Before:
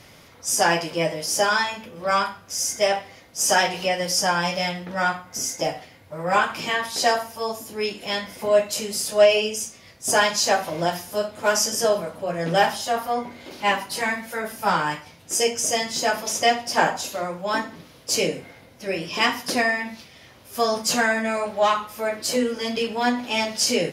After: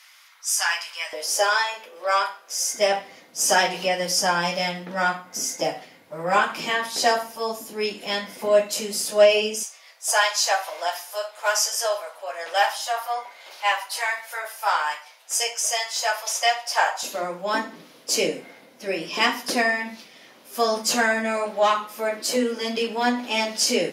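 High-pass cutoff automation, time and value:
high-pass 24 dB/octave
1.1 kHz
from 1.13 s 430 Hz
from 2.74 s 170 Hz
from 9.63 s 660 Hz
from 17.03 s 200 Hz

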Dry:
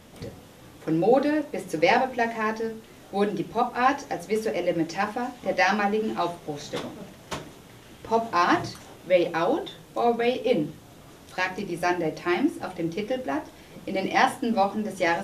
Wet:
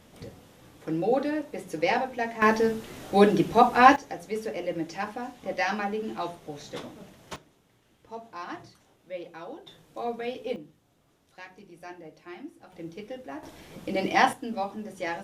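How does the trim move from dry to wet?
-5 dB
from 2.42 s +6 dB
from 3.96 s -6 dB
from 7.36 s -17 dB
from 9.67 s -9.5 dB
from 10.56 s -18.5 dB
from 12.72 s -11 dB
from 13.43 s -0.5 dB
from 14.33 s -8.5 dB

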